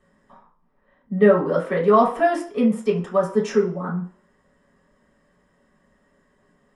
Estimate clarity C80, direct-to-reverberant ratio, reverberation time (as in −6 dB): 13.0 dB, −6.5 dB, 0.50 s